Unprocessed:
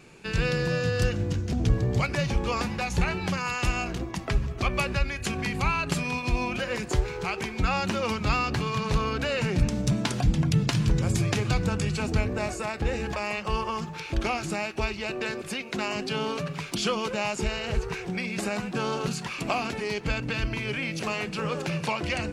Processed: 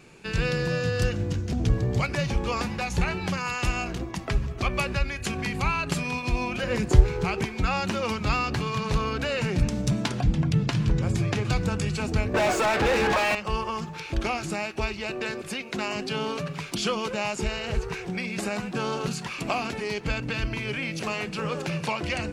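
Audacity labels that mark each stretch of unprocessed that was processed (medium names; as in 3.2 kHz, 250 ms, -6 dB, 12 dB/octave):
6.630000	7.450000	bass shelf 360 Hz +10 dB
10.080000	11.450000	treble shelf 6 kHz -11 dB
12.340000	13.350000	overdrive pedal drive 32 dB, tone 2 kHz, clips at -14.5 dBFS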